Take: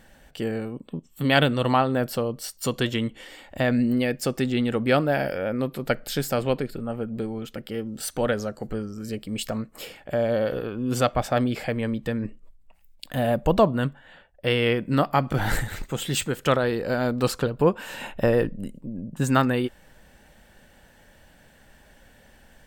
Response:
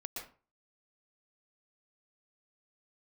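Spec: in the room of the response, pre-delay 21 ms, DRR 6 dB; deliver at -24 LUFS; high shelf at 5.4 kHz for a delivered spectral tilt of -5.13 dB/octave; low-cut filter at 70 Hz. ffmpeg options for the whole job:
-filter_complex "[0:a]highpass=70,highshelf=f=5400:g=-5.5,asplit=2[s0][s1];[1:a]atrim=start_sample=2205,adelay=21[s2];[s1][s2]afir=irnorm=-1:irlink=0,volume=0.562[s3];[s0][s3]amix=inputs=2:normalize=0,volume=1.12"

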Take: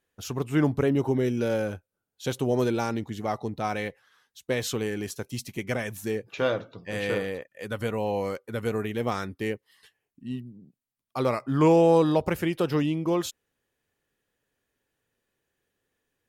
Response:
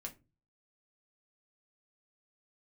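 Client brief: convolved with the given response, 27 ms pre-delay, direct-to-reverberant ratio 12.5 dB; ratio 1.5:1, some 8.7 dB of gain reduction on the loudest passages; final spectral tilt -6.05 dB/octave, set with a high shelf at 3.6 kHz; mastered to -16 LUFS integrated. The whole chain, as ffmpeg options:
-filter_complex "[0:a]highshelf=f=3600:g=-4.5,acompressor=threshold=0.01:ratio=1.5,asplit=2[s0][s1];[1:a]atrim=start_sample=2205,adelay=27[s2];[s1][s2]afir=irnorm=-1:irlink=0,volume=0.335[s3];[s0][s3]amix=inputs=2:normalize=0,volume=7.94"

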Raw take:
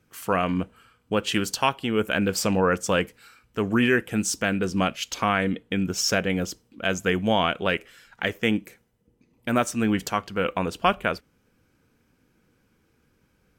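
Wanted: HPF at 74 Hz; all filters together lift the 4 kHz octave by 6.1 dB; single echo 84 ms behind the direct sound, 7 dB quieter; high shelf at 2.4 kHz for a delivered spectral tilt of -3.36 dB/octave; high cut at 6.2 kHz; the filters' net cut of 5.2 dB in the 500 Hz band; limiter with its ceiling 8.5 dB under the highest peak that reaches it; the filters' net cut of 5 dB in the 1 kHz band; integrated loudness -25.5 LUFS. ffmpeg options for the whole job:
-af "highpass=74,lowpass=6200,equalizer=f=500:t=o:g=-5,equalizer=f=1000:t=o:g=-6.5,highshelf=f=2400:g=4,equalizer=f=4000:t=o:g=6.5,alimiter=limit=0.2:level=0:latency=1,aecho=1:1:84:0.447,volume=1.12"

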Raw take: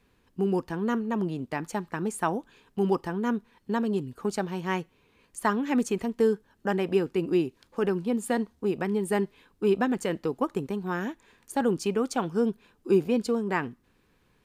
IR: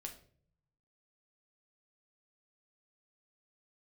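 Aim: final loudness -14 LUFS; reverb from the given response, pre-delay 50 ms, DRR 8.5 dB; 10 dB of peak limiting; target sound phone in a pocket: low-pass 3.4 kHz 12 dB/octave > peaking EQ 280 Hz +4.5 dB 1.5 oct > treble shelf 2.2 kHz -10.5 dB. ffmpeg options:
-filter_complex "[0:a]alimiter=limit=0.0794:level=0:latency=1,asplit=2[s0][s1];[1:a]atrim=start_sample=2205,adelay=50[s2];[s1][s2]afir=irnorm=-1:irlink=0,volume=0.596[s3];[s0][s3]amix=inputs=2:normalize=0,lowpass=3400,equalizer=f=280:t=o:w=1.5:g=4.5,highshelf=f=2200:g=-10.5,volume=5.96"

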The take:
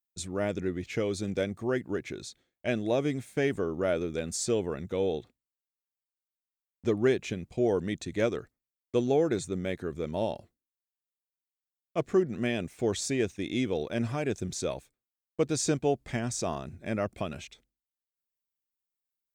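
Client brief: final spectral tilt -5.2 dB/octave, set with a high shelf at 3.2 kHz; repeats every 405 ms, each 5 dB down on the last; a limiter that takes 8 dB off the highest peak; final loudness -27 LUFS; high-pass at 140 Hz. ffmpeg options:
-af "highpass=140,highshelf=f=3200:g=-5,alimiter=limit=0.0841:level=0:latency=1,aecho=1:1:405|810|1215|1620|2025|2430|2835:0.562|0.315|0.176|0.0988|0.0553|0.031|0.0173,volume=2.11"

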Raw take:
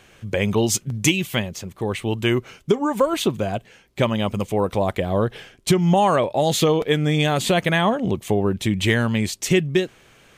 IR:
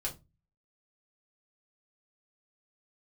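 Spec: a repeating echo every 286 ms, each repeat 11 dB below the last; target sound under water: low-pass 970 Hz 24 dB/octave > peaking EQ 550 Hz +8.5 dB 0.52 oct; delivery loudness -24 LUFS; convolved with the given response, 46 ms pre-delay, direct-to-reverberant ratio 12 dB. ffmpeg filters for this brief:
-filter_complex "[0:a]aecho=1:1:286|572|858:0.282|0.0789|0.0221,asplit=2[s0][s1];[1:a]atrim=start_sample=2205,adelay=46[s2];[s1][s2]afir=irnorm=-1:irlink=0,volume=0.211[s3];[s0][s3]amix=inputs=2:normalize=0,lowpass=f=970:w=0.5412,lowpass=f=970:w=1.3066,equalizer=f=550:t=o:w=0.52:g=8.5,volume=0.531"

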